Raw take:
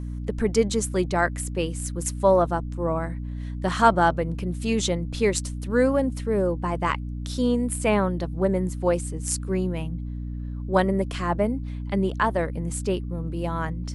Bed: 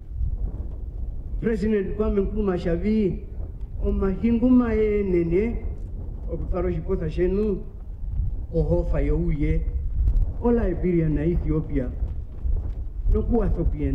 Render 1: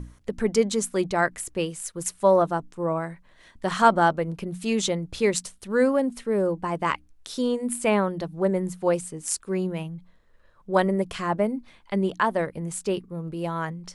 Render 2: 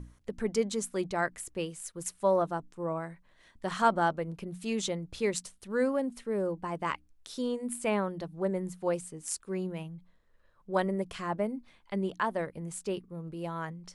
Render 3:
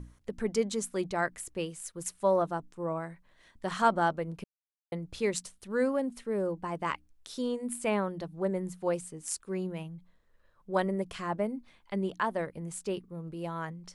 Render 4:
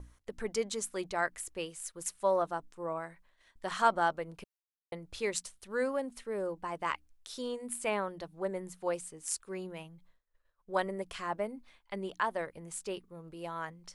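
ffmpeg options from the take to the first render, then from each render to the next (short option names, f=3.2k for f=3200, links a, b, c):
-af "bandreject=f=60:t=h:w=6,bandreject=f=120:t=h:w=6,bandreject=f=180:t=h:w=6,bandreject=f=240:t=h:w=6,bandreject=f=300:t=h:w=6"
-af "volume=-7.5dB"
-filter_complex "[0:a]asplit=3[a][b][c];[a]atrim=end=4.44,asetpts=PTS-STARTPTS,afade=t=out:st=4.436:d=0.004:c=hsin[d];[b]atrim=start=4.44:end=4.92,asetpts=PTS-STARTPTS,volume=0[e];[c]atrim=start=4.92,asetpts=PTS-STARTPTS,afade=t=in:d=0.004:c=hsin[f];[d][e][f]concat=n=3:v=0:a=1"
-af "agate=range=-33dB:threshold=-55dB:ratio=3:detection=peak,equalizer=f=170:w=0.56:g=-10"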